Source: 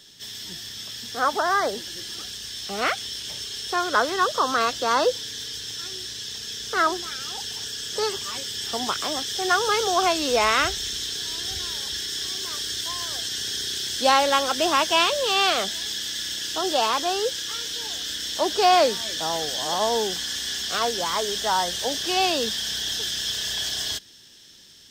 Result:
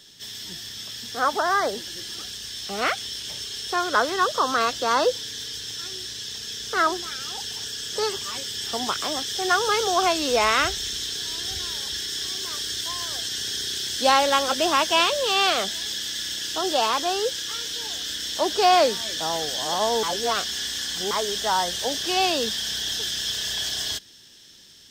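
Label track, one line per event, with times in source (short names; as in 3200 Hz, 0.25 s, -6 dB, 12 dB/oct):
13.500000	14.060000	echo throw 0.47 s, feedback 35%, level -9.5 dB
20.030000	21.110000	reverse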